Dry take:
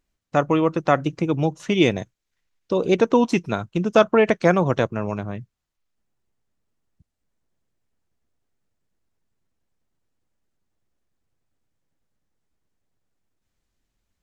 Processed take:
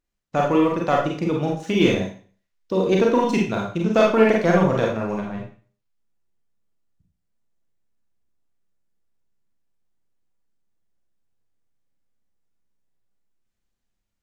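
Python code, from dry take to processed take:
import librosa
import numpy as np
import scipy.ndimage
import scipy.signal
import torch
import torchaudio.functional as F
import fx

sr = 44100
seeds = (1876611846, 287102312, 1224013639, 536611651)

y = fx.leveller(x, sr, passes=1)
y = fx.rev_schroeder(y, sr, rt60_s=0.42, comb_ms=32, drr_db=-1.5)
y = F.gain(torch.from_numpy(y), -6.5).numpy()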